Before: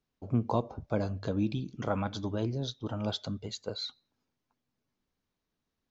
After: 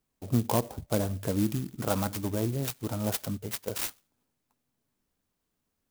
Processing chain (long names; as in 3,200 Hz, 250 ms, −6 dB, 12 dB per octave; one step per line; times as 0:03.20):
high-shelf EQ 6,700 Hz +11 dB
converter with an unsteady clock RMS 0.092 ms
level +2.5 dB